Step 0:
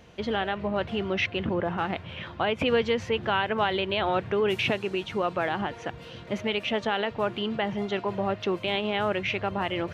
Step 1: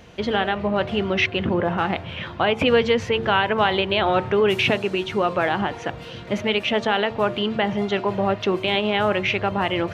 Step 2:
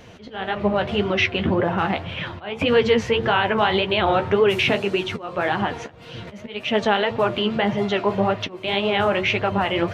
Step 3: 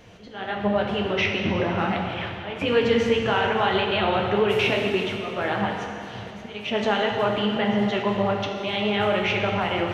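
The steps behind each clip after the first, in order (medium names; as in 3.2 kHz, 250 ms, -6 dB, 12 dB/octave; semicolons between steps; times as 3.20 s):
de-hum 75.29 Hz, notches 17; trim +6.5 dB
slow attack 358 ms; in parallel at -0.5 dB: peak limiter -13.5 dBFS, peak gain reduction 7.5 dB; on the sum: flange 1.8 Hz, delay 6.2 ms, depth 9.2 ms, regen +33%
plate-style reverb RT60 2.6 s, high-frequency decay 0.9×, DRR 1 dB; trim -5 dB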